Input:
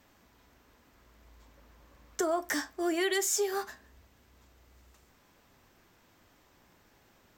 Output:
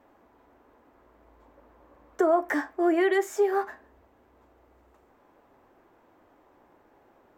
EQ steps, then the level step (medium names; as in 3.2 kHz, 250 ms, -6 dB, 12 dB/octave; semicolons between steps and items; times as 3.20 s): FFT filter 180 Hz 0 dB, 300 Hz +11 dB, 820 Hz +12 dB, 5.2 kHz -11 dB, 13 kHz -7 dB; dynamic bell 2 kHz, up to +6 dB, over -45 dBFS, Q 1.3; -4.0 dB